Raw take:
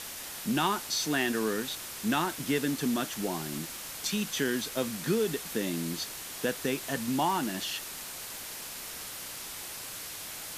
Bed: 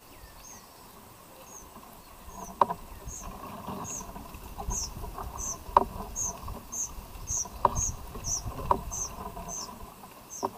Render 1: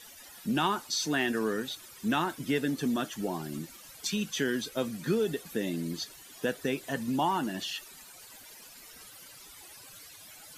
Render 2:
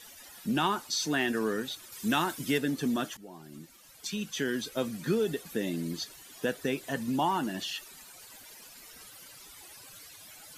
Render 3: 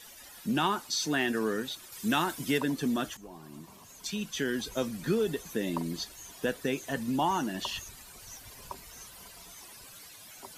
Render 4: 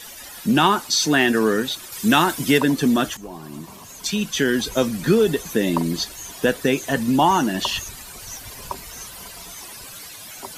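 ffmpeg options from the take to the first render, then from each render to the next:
-af "afftdn=nr=15:nf=-41"
-filter_complex "[0:a]asettb=1/sr,asplit=3[s0][s1][s2];[s0]atrim=end=1.924[s3];[s1]atrim=start=1.92:end=2.58,asetpts=PTS-STARTPTS,afade=t=in:d=0.004:c=qsin,afade=t=out:st=0.656:d=0.004:c=qsin,highshelf=f=3400:g=7.5[s4];[s2]atrim=start=2.576[s5];[s3][s4]acrossfade=d=0.004:c1=hsin:c2=qsin[s6];[s6][s5]acrossfade=d=0.004:c1=qsin:c2=hsin,asplit=2[s7][s8];[s7]atrim=end=3.17,asetpts=PTS-STARTPTS,afade=t=out:st=3.166:d=0.004:c=hsin:silence=0.125893[s9];[s8]atrim=start=3.17,asetpts=PTS-STARTPTS,afade=t=in:d=1.58:silence=0.125893[s10];[s9][s10]concat=n=2:v=0:a=1"
-filter_complex "[1:a]volume=0.133[s0];[0:a][s0]amix=inputs=2:normalize=0"
-af "volume=3.76"

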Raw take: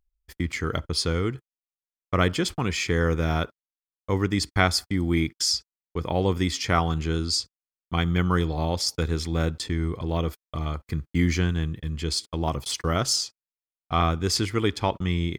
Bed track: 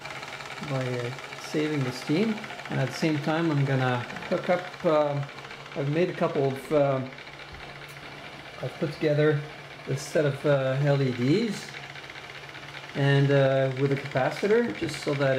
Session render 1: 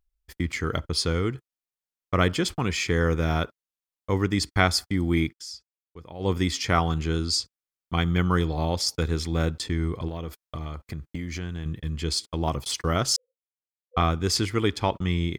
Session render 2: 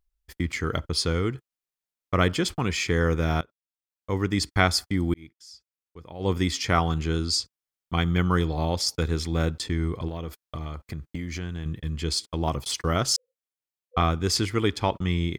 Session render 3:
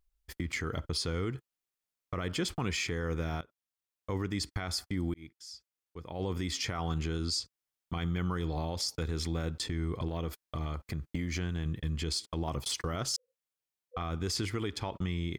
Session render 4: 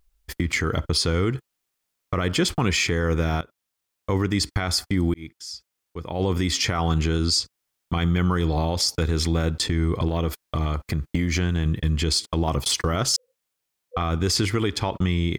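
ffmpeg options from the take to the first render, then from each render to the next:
-filter_complex "[0:a]asettb=1/sr,asplit=3[s0][s1][s2];[s0]atrim=end=10.084[s3];[s1]atrim=start=10.08:end=11.66,asetpts=PTS-STARTPTS,afade=t=in:d=0.004:c=qsin,afade=t=out:st=1.576:d=0.004:c=qsin,acompressor=threshold=0.0398:ratio=10:attack=3.2:release=140:knee=1:detection=peak[s4];[s2]atrim=start=11.656[s5];[s3][s4]acrossfade=d=0.004:c1=hsin:c2=qsin[s6];[s6][s5]acrossfade=d=0.004:c1=qsin:c2=hsin,asettb=1/sr,asplit=3[s7][s8][s9];[s7]atrim=end=13.164[s10];[s8]atrim=start=13.16:end=13.97,asetpts=PTS-STARTPTS,afade=t=in:d=0.004:c=qsin,afade=t=out:st=0.806:d=0.004:c=qsin,asuperpass=centerf=500:order=12:qfactor=7[s11];[s9]atrim=start=13.966[s12];[s10][s11]acrossfade=d=0.004:c1=hsin:c2=qsin[s13];[s13][s12]acrossfade=d=0.004:c1=qsin:c2=hsin,asplit=3[s14][s15][s16];[s14]atrim=end=5.38,asetpts=PTS-STARTPTS,afade=t=out:st=5.24:d=0.14:c=qsin:silence=0.177828[s17];[s15]atrim=start=5.38:end=6.19,asetpts=PTS-STARTPTS,volume=0.178[s18];[s16]atrim=start=6.19,asetpts=PTS-STARTPTS,afade=t=in:d=0.14:c=qsin:silence=0.177828[s19];[s17][s18][s19]concat=n=3:v=0:a=1"
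-filter_complex "[0:a]asplit=3[s0][s1][s2];[s0]atrim=end=3.41,asetpts=PTS-STARTPTS,afade=t=out:st=3.406:d=0.004:c=hsin:silence=0.0707946[s3];[s1]atrim=start=3.41:end=5.14,asetpts=PTS-STARTPTS,afade=t=in:d=0.99:silence=0.0707946,afade=t=out:st=1.726:d=0.004:c=hsin[s4];[s2]atrim=start=5.14,asetpts=PTS-STARTPTS,afade=t=in:d=0.93[s5];[s3][s4][s5]concat=n=3:v=0:a=1"
-af "acompressor=threshold=0.0316:ratio=2,alimiter=limit=0.0668:level=0:latency=1:release=34"
-af "volume=3.55"

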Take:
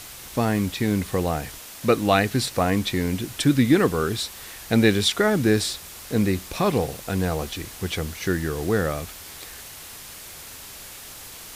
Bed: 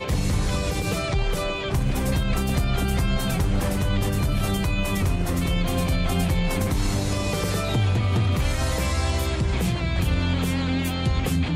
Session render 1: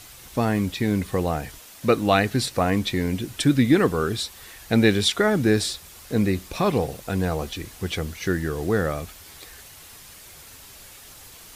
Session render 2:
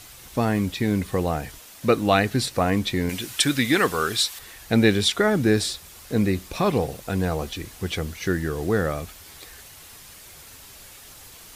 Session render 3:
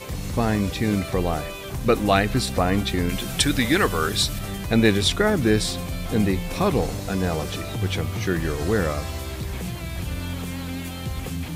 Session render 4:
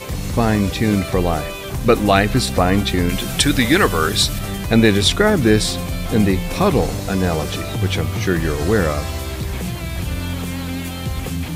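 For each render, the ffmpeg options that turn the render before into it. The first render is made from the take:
-af "afftdn=nr=6:nf=-41"
-filter_complex "[0:a]asettb=1/sr,asplit=3[s0][s1][s2];[s0]atrim=end=3.094[s3];[s1]atrim=start=3.09:end=4.39,asetpts=PTS-STARTPTS,afade=t=in:d=0.004:c=qsin,afade=t=out:st=1.296:d=0.004:c=qsin,tiltshelf=f=640:g=-7.5[s4];[s2]atrim=start=4.386[s5];[s3][s4]acrossfade=d=0.004:c1=hsin:c2=qsin[s6];[s6][s5]acrossfade=d=0.004:c1=qsin:c2=hsin"
-filter_complex "[1:a]volume=0.447[s0];[0:a][s0]amix=inputs=2:normalize=0"
-af "volume=1.88,alimiter=limit=0.891:level=0:latency=1"

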